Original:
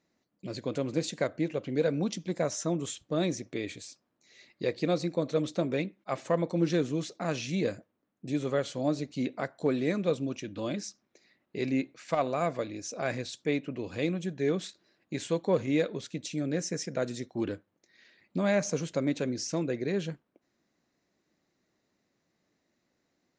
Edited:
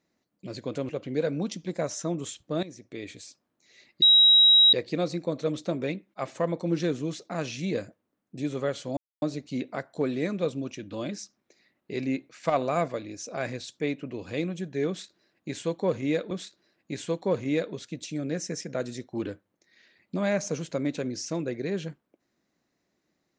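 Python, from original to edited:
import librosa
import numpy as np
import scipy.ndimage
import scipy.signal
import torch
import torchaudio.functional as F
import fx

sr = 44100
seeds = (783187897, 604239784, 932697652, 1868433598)

y = fx.edit(x, sr, fx.cut(start_s=0.89, length_s=0.61),
    fx.fade_in_from(start_s=3.24, length_s=0.6, floor_db=-16.0),
    fx.insert_tone(at_s=4.63, length_s=0.71, hz=3840.0, db=-13.5),
    fx.insert_silence(at_s=8.87, length_s=0.25),
    fx.clip_gain(start_s=12.1, length_s=0.43, db=3.0),
    fx.repeat(start_s=14.53, length_s=1.43, count=2), tone=tone)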